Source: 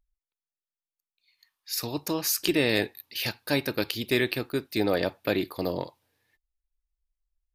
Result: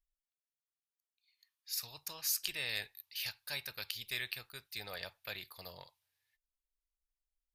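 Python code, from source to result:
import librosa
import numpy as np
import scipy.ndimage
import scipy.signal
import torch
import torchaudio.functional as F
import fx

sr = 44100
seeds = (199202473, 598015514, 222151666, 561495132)

y = fx.tone_stack(x, sr, knobs='10-0-10')
y = y * 10.0 ** (-6.5 / 20.0)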